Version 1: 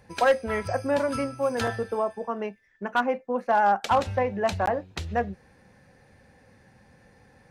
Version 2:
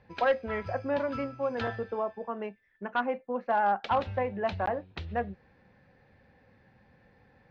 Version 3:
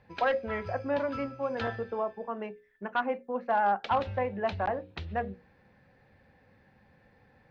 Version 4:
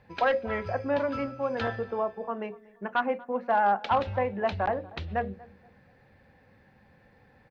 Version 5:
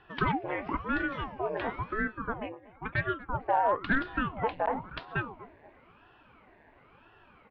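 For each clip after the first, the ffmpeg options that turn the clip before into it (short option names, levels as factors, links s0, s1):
-af "lowpass=f=4000:w=0.5412,lowpass=f=4000:w=1.3066,volume=0.562"
-af "bandreject=f=60:t=h:w=6,bandreject=f=120:t=h:w=6,bandreject=f=180:t=h:w=6,bandreject=f=240:t=h:w=6,bandreject=f=300:t=h:w=6,bandreject=f=360:t=h:w=6,bandreject=f=420:t=h:w=6,bandreject=f=480:t=h:w=6,bandreject=f=540:t=h:w=6"
-filter_complex "[0:a]asplit=2[s0][s1];[s1]adelay=238,lowpass=f=1300:p=1,volume=0.1,asplit=2[s2][s3];[s3]adelay=238,lowpass=f=1300:p=1,volume=0.32,asplit=2[s4][s5];[s5]adelay=238,lowpass=f=1300:p=1,volume=0.32[s6];[s0][s2][s4][s6]amix=inputs=4:normalize=0,volume=1.33"
-af "acompressor=threshold=0.01:ratio=1.5,highpass=f=140:w=0.5412,highpass=f=140:w=1.3066,equalizer=f=210:t=q:w=4:g=-8,equalizer=f=310:t=q:w=4:g=-8,equalizer=f=930:t=q:w=4:g=5,equalizer=f=1300:t=q:w=4:g=-10,lowpass=f=3100:w=0.5412,lowpass=f=3100:w=1.3066,aeval=exprs='val(0)*sin(2*PI*490*n/s+490*0.85/0.98*sin(2*PI*0.98*n/s))':c=same,volume=2.11"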